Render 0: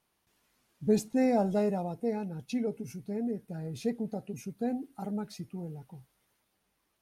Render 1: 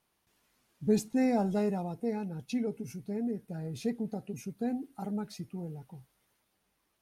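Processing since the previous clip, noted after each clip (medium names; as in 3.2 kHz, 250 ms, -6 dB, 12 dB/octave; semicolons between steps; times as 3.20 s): dynamic bell 580 Hz, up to -6 dB, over -44 dBFS, Q 2.6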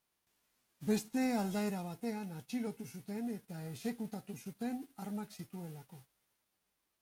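formants flattened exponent 0.6; trim -6 dB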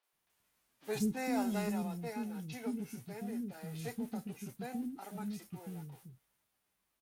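three bands offset in time mids, highs, lows 30/130 ms, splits 350/5000 Hz; trim +1.5 dB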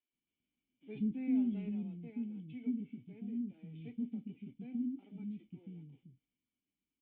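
cascade formant filter i; trim +4.5 dB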